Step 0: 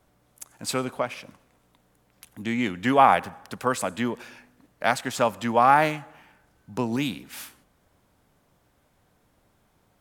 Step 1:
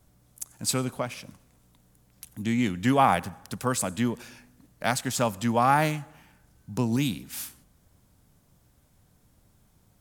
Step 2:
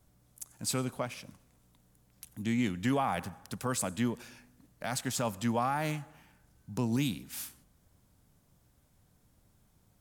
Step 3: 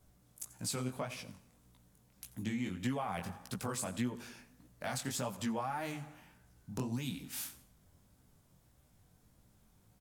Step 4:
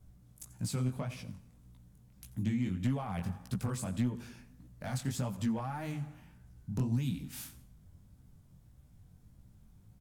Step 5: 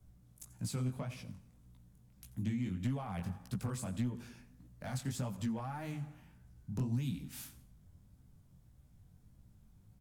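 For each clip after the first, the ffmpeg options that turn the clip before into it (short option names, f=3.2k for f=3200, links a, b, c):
-af "bass=f=250:g=11,treble=f=4k:g=10,volume=-4.5dB"
-af "alimiter=limit=-16dB:level=0:latency=1:release=14,volume=-4.5dB"
-af "aecho=1:1:86|172|258:0.106|0.0413|0.0161,acompressor=threshold=-34dB:ratio=5,flanger=delay=15.5:depth=7.8:speed=1.7,volume=3dB"
-af "asoftclip=type=hard:threshold=-29.5dB,bass=f=250:g=13,treble=f=4k:g=-1,volume=-3dB"
-filter_complex "[0:a]acrossover=split=200|3000[a][b][c];[b]acompressor=threshold=-34dB:ratio=6[d];[a][d][c]amix=inputs=3:normalize=0,volume=-3dB"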